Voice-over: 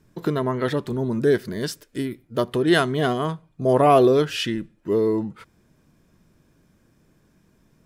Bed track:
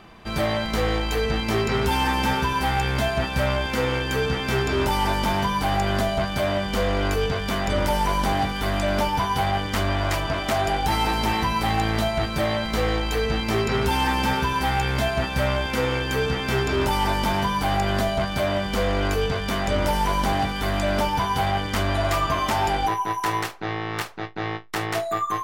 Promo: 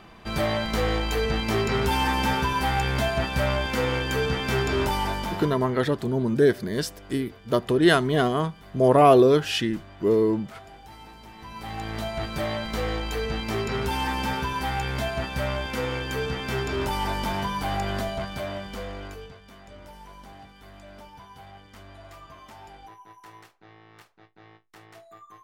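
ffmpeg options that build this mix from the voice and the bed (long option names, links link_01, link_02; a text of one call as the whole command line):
ffmpeg -i stem1.wav -i stem2.wav -filter_complex "[0:a]adelay=5150,volume=0dB[link_01];[1:a]volume=17dB,afade=type=out:start_time=4.76:duration=0.96:silence=0.0794328,afade=type=in:start_time=11.36:duration=1:silence=0.11885,afade=type=out:start_time=17.82:duration=1.58:silence=0.11885[link_02];[link_01][link_02]amix=inputs=2:normalize=0" out.wav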